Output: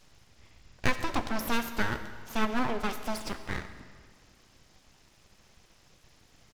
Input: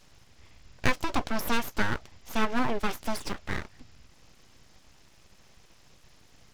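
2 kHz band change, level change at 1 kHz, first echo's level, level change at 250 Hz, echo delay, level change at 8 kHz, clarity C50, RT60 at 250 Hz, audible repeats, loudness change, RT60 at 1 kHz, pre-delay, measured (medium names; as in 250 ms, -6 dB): -1.5 dB, -1.5 dB, -20.0 dB, -1.0 dB, 138 ms, -1.5 dB, 10.5 dB, 1.7 s, 1, -1.5 dB, 1.9 s, 37 ms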